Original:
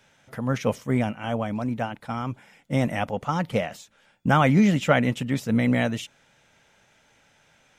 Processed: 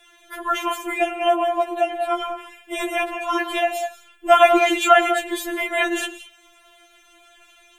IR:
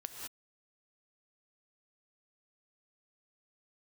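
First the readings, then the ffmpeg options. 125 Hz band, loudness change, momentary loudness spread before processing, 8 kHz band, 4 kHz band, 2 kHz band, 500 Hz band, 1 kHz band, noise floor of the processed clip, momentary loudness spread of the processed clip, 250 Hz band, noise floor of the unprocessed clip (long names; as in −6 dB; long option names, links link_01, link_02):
below −40 dB, +4.5 dB, 13 LU, +8.5 dB, +9.0 dB, +6.5 dB, +7.5 dB, +9.5 dB, −55 dBFS, 16 LU, −4.5 dB, −62 dBFS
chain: -filter_complex "[0:a]aexciter=amount=1.3:drive=2.9:freq=2800,asplit=2[link_01][link_02];[1:a]atrim=start_sample=2205,afade=type=out:start_time=0.32:duration=0.01,atrim=end_sample=14553,highshelf=frequency=3400:gain=-6.5[link_03];[link_02][link_03]afir=irnorm=-1:irlink=0,volume=0.5dB[link_04];[link_01][link_04]amix=inputs=2:normalize=0,afftfilt=real='re*4*eq(mod(b,16),0)':imag='im*4*eq(mod(b,16),0)':win_size=2048:overlap=0.75,volume=6dB"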